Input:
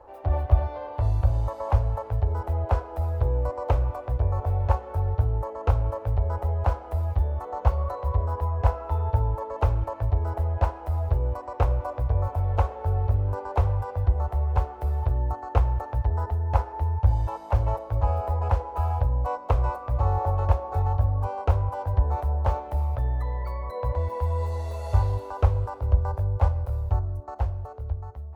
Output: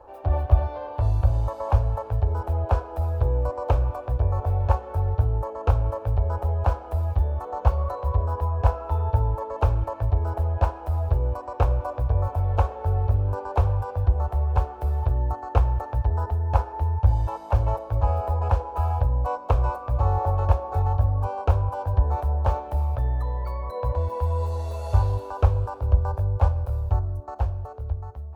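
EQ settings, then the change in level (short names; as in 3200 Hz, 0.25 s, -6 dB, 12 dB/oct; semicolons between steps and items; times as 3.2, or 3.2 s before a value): notch 2000 Hz, Q 8.6; +1.5 dB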